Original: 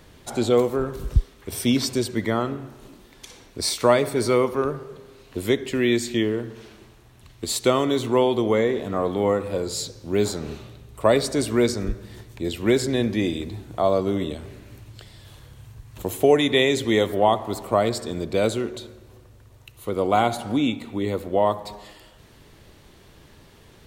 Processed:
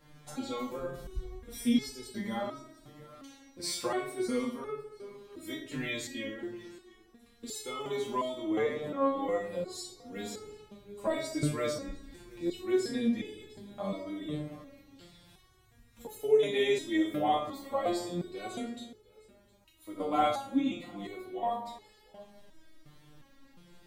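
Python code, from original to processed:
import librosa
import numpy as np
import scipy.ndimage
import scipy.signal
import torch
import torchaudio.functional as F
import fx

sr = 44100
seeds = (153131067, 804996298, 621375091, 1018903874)

p1 = x + fx.echo_single(x, sr, ms=710, db=-21.5, dry=0)
p2 = fx.room_shoebox(p1, sr, seeds[0], volume_m3=970.0, walls='furnished', distance_m=2.2)
y = fx.resonator_held(p2, sr, hz=2.8, low_hz=150.0, high_hz=430.0)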